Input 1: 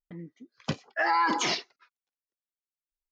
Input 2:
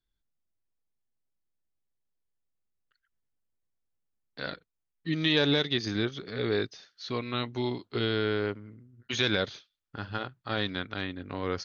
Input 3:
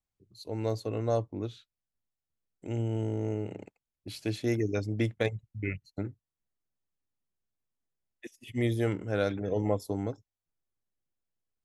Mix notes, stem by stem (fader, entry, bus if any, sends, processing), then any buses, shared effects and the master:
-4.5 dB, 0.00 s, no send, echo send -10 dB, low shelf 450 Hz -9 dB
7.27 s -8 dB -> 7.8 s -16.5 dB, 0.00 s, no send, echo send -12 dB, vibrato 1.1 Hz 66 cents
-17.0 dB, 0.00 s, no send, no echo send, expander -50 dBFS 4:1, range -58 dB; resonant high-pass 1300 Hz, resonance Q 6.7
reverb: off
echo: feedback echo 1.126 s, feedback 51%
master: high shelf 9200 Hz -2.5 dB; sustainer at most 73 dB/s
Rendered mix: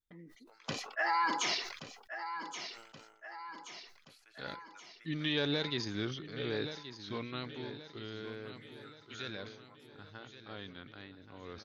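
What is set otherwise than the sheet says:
stem 3 -17.0 dB -> -25.0 dB; master: missing high shelf 9200 Hz -2.5 dB

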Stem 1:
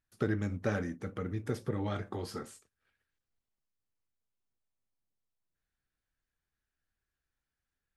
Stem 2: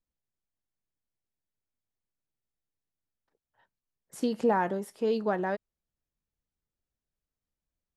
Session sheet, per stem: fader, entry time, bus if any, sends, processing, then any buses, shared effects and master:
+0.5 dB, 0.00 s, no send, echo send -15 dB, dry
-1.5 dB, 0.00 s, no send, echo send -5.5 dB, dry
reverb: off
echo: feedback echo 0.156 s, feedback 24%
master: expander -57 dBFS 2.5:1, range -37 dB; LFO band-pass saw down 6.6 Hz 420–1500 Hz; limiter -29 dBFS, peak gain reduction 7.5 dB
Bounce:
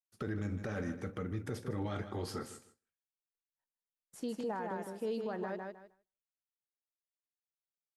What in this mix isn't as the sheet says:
stem 2 -1.5 dB -> -8.0 dB; master: missing LFO band-pass saw down 6.6 Hz 420–1500 Hz

